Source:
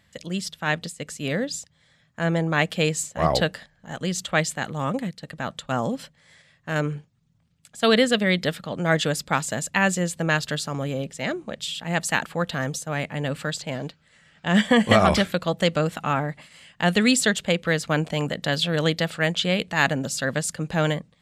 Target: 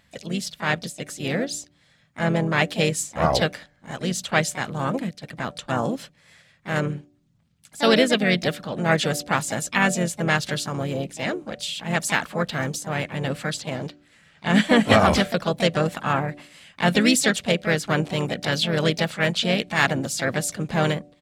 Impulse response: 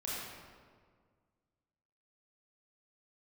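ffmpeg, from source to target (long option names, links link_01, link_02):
-filter_complex "[0:a]bandreject=frequency=291.9:width_type=h:width=4,bandreject=frequency=583.8:width_type=h:width=4,asplit=4[link_01][link_02][link_03][link_04];[link_02]asetrate=35002,aresample=44100,atempo=1.25992,volume=-15dB[link_05];[link_03]asetrate=37084,aresample=44100,atempo=1.18921,volume=-15dB[link_06];[link_04]asetrate=55563,aresample=44100,atempo=0.793701,volume=-8dB[link_07];[link_01][link_05][link_06][link_07]amix=inputs=4:normalize=0"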